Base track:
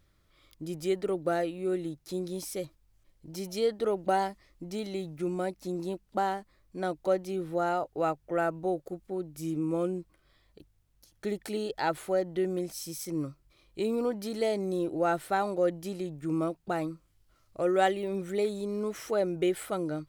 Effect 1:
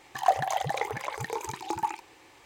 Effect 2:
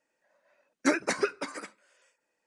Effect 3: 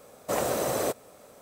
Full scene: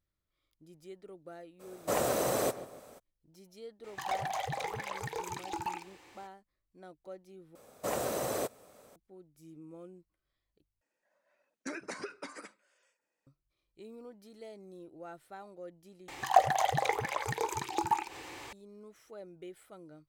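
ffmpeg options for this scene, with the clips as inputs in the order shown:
-filter_complex "[3:a]asplit=2[s0][s1];[1:a]asplit=2[s2][s3];[0:a]volume=0.106[s4];[s0]asplit=2[s5][s6];[s6]adelay=145,lowpass=f=2000:p=1,volume=0.2,asplit=2[s7][s8];[s8]adelay=145,lowpass=f=2000:p=1,volume=0.42,asplit=2[s9][s10];[s10]adelay=145,lowpass=f=2000:p=1,volume=0.42,asplit=2[s11][s12];[s12]adelay=145,lowpass=f=2000:p=1,volume=0.42[s13];[s5][s7][s9][s11][s13]amix=inputs=5:normalize=0[s14];[s2]asoftclip=type=tanh:threshold=0.0447[s15];[2:a]acompressor=threshold=0.0398:ratio=6:attack=3.2:release=140:knee=1:detection=peak[s16];[s3]acompressor=mode=upward:threshold=0.0178:ratio=2.5:attack=3.2:release=140:knee=2.83:detection=peak[s17];[s4]asplit=4[s18][s19][s20][s21];[s18]atrim=end=7.554[s22];[s1]atrim=end=1.41,asetpts=PTS-STARTPTS,volume=0.501[s23];[s19]atrim=start=8.956:end=10.814[s24];[s16]atrim=end=2.46,asetpts=PTS-STARTPTS,volume=0.447[s25];[s20]atrim=start=13.266:end=16.084[s26];[s17]atrim=end=2.45[s27];[s21]atrim=start=18.526[s28];[s14]atrim=end=1.41,asetpts=PTS-STARTPTS,volume=0.75,afade=t=in:d=0.02,afade=t=out:st=1.39:d=0.02,adelay=1590[s29];[s15]atrim=end=2.45,asetpts=PTS-STARTPTS,volume=0.75,afade=t=in:d=0.02,afade=t=out:st=2.43:d=0.02,adelay=3830[s30];[s22][s23]acrossfade=d=0.004:c1=hsin:c2=hsin[s31];[s31][s24]acrossfade=d=0.004:c1=hsin:c2=hsin[s32];[s32][s25]acrossfade=d=0.004:c1=hsin:c2=hsin[s33];[s33][s26]acrossfade=d=0.004:c1=hsin:c2=hsin[s34];[s34][s27]acrossfade=d=0.004:c1=hsin:c2=hsin[s35];[s35][s28]acrossfade=d=0.004:c1=hsin:c2=hsin[s36];[s36][s29][s30]amix=inputs=3:normalize=0"

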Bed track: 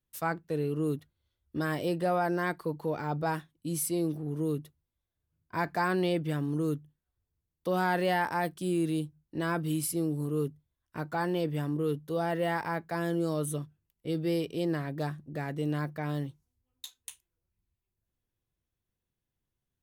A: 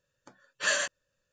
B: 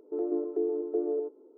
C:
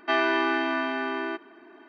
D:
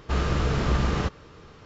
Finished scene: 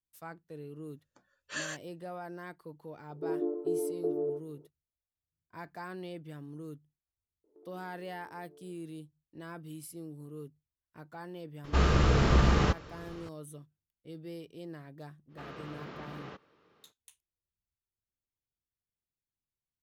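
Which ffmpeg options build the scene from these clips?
-filter_complex "[2:a]asplit=2[s0][s1];[4:a]asplit=2[s2][s3];[0:a]volume=0.2[s4];[s1]acompressor=threshold=0.01:ratio=6:attack=3.2:release=140:knee=1:detection=peak[s5];[s3]highpass=220,lowpass=4000[s6];[1:a]atrim=end=1.32,asetpts=PTS-STARTPTS,volume=0.299,afade=t=in:d=0.004:c=hsin,afade=t=out:st=1.316:d=0.004:c=hsin,adelay=890[s7];[s0]atrim=end=1.57,asetpts=PTS-STARTPTS,volume=0.75,afade=t=in:d=0.004:c=hsin,afade=t=out:st=1.566:d=0.004:c=hsin,adelay=3100[s8];[s5]atrim=end=1.57,asetpts=PTS-STARTPTS,volume=0.158,afade=t=in:d=0.004:c=hsin,afade=t=out:st=1.566:d=0.004:c=hsin,adelay=7440[s9];[s2]atrim=end=1.65,asetpts=PTS-STARTPTS,afade=t=in:d=0.004:c=hsin,afade=t=out:st=1.646:d=0.004:c=hsin,adelay=11640[s10];[s6]atrim=end=1.65,asetpts=PTS-STARTPTS,volume=0.158,afade=t=in:d=0.05,afade=t=out:st=1.6:d=0.05,adelay=15280[s11];[s4][s7][s8][s9][s10][s11]amix=inputs=6:normalize=0"

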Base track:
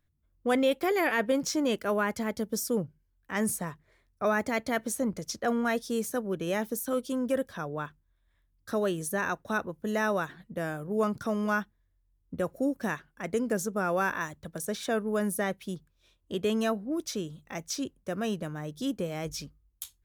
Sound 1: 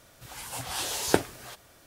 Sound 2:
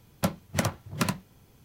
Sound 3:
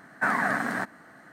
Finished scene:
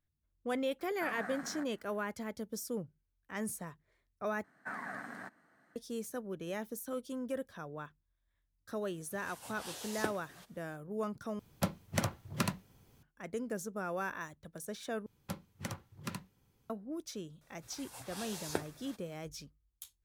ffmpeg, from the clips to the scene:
-filter_complex "[3:a]asplit=2[s0][s1];[1:a]asplit=2[s2][s3];[2:a]asplit=2[s4][s5];[0:a]volume=0.335[s6];[s2]highpass=81[s7];[s4]acrusher=bits=11:mix=0:aa=0.000001[s8];[s5]bandreject=f=650:w=5.3[s9];[s3]bandreject=f=3000:w=11[s10];[s6]asplit=4[s11][s12][s13][s14];[s11]atrim=end=4.444[s15];[s1]atrim=end=1.32,asetpts=PTS-STARTPTS,volume=0.141[s16];[s12]atrim=start=5.756:end=11.394[s17];[s8]atrim=end=1.64,asetpts=PTS-STARTPTS,volume=0.501[s18];[s13]atrim=start=13.026:end=15.064[s19];[s9]atrim=end=1.64,asetpts=PTS-STARTPTS,volume=0.2[s20];[s14]atrim=start=16.696[s21];[s0]atrim=end=1.32,asetpts=PTS-STARTPTS,volume=0.133,afade=t=in:d=0.004:c=hsin,afade=t=out:st=1.316:d=0.004:c=hsin,adelay=790[s22];[s7]atrim=end=1.86,asetpts=PTS-STARTPTS,volume=0.211,afade=t=in:d=0.004:c=hsin,afade=t=out:st=1.856:d=0.004:c=hsin,adelay=392490S[s23];[s10]atrim=end=1.86,asetpts=PTS-STARTPTS,volume=0.224,afade=t=in:d=0.004:c=hsin,afade=t=out:st=1.856:d=0.004:c=hsin,adelay=17410[s24];[s15][s16]acrossfade=d=0.004:c1=hsin:c2=hsin[s25];[s25][s17]acrossfade=d=0.004:c1=hsin:c2=hsin[s26];[s26][s18]acrossfade=d=0.004:c1=hsin:c2=hsin[s27];[s27][s19]acrossfade=d=0.004:c1=hsin:c2=hsin[s28];[s28][s20]acrossfade=d=0.004:c1=hsin:c2=hsin[s29];[s29][s21]acrossfade=d=0.004:c1=hsin:c2=hsin[s30];[s30][s22][s23][s24]amix=inputs=4:normalize=0"

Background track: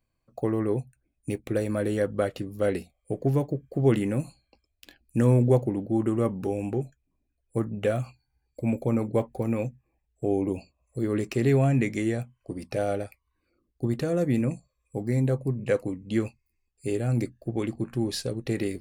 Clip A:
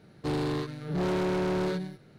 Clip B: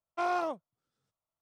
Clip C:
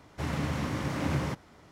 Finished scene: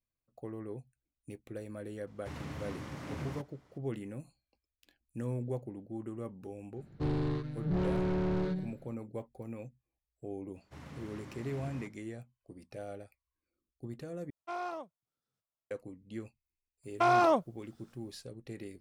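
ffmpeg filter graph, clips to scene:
-filter_complex "[3:a]asplit=2[s0][s1];[2:a]asplit=2[s2][s3];[0:a]volume=0.158[s4];[1:a]aemphasis=mode=reproduction:type=bsi[s5];[s3]alimiter=level_in=39.8:limit=0.891:release=50:level=0:latency=1[s6];[s4]asplit=2[s7][s8];[s7]atrim=end=14.304[s9];[s2]atrim=end=1.41,asetpts=PTS-STARTPTS,volume=0.398[s10];[s8]atrim=start=15.706[s11];[s0]atrim=end=1.71,asetpts=PTS-STARTPTS,volume=0.282,afade=t=in:d=0.004:c=hsin,afade=t=out:st=1.706:d=0.004:c=hsin,adelay=2070[s12];[s5]atrim=end=2.18,asetpts=PTS-STARTPTS,volume=0.422,afade=t=in:d=0.004:c=hsin,afade=t=out:st=2.176:d=0.004:c=hsin,adelay=6760[s13];[s1]atrim=end=1.71,asetpts=PTS-STARTPTS,volume=0.141,afade=t=in:d=0.05,afade=t=out:st=1.66:d=0.05,adelay=10530[s14];[s6]atrim=end=1.41,asetpts=PTS-STARTPTS,volume=0.15,afade=t=in:d=0.004:c=hsin,afade=t=out:st=1.406:d=0.004:c=hsin,adelay=16830[s15];[s9][s10]acrossfade=d=0.004:c1=hsin:c2=hsin[s16];[s16][s11]acrossfade=d=0.004:c1=hsin:c2=hsin[s17];[s17][s12][s13][s14][s15]amix=inputs=5:normalize=0"

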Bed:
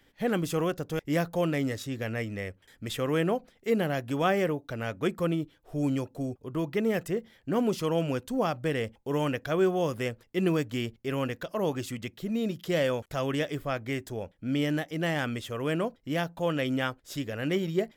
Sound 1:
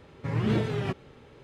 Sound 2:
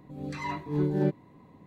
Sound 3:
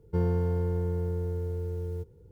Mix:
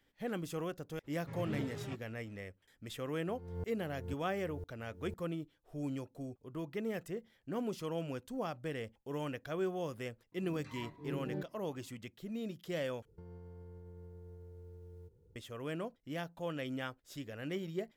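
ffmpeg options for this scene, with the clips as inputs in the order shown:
-filter_complex "[3:a]asplit=2[s0][s1];[0:a]volume=0.282[s2];[s0]aeval=exprs='val(0)*pow(10,-35*if(lt(mod(-2*n/s,1),2*abs(-2)/1000),1-mod(-2*n/s,1)/(2*abs(-2)/1000),(mod(-2*n/s,1)-2*abs(-2)/1000)/(1-2*abs(-2)/1000))/20)':c=same[s3];[s1]acompressor=threshold=0.0126:ratio=6:attack=3.2:release=140:knee=1:detection=peak[s4];[s2]asplit=2[s5][s6];[s5]atrim=end=13.054[s7];[s4]atrim=end=2.31,asetpts=PTS-STARTPTS,volume=0.282[s8];[s6]atrim=start=15.356[s9];[1:a]atrim=end=1.43,asetpts=PTS-STARTPTS,volume=0.188,afade=t=in:d=0.02,afade=t=out:st=1.41:d=0.02,adelay=1030[s10];[s3]atrim=end=2.31,asetpts=PTS-STARTPTS,volume=0.355,afade=t=in:d=0.004:c=hsin,afade=t=out:st=2.306:d=0.004:c=hsin,adelay=3140[s11];[2:a]atrim=end=1.66,asetpts=PTS-STARTPTS,volume=0.188,afade=t=in:d=0.004:c=hsin,afade=t=out:st=1.656:d=0.004:c=hsin,adelay=10320[s12];[s7][s8]acrossfade=d=0.004:c1=hsin:c2=hsin[s13];[s13][s9]acrossfade=d=0.004:c1=hsin:c2=hsin[s14];[s14][s10][s11][s12]amix=inputs=4:normalize=0"

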